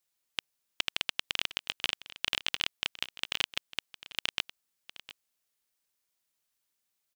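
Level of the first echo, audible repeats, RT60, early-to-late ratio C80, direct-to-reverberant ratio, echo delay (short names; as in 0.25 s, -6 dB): -16.5 dB, 1, none, none, none, 0.708 s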